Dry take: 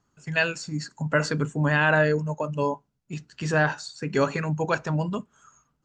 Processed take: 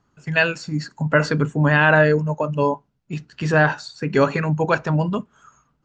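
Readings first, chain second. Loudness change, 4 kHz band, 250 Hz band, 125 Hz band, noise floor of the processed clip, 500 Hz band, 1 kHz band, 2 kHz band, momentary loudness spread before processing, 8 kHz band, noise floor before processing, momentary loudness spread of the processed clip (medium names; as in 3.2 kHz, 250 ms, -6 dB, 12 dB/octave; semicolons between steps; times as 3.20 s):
+5.5 dB, +3.5 dB, +6.0 dB, +6.0 dB, -68 dBFS, +6.0 dB, +6.0 dB, +5.5 dB, 12 LU, no reading, -73 dBFS, 13 LU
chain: Bessel low-pass 4.1 kHz, order 2; trim +6 dB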